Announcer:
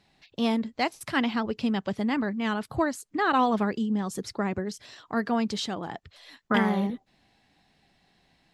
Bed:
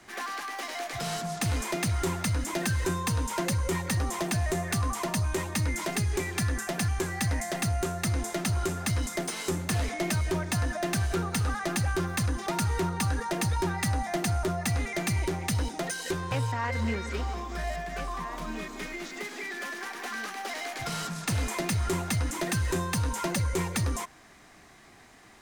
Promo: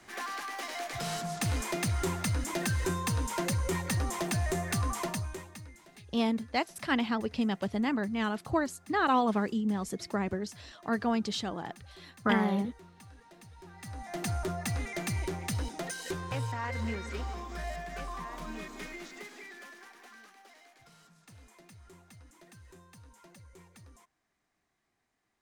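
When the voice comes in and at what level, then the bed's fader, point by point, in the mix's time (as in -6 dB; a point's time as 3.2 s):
5.75 s, -3.0 dB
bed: 5.04 s -2.5 dB
5.84 s -25.5 dB
13.55 s -25.5 dB
14.26 s -5 dB
18.87 s -5 dB
20.96 s -26.5 dB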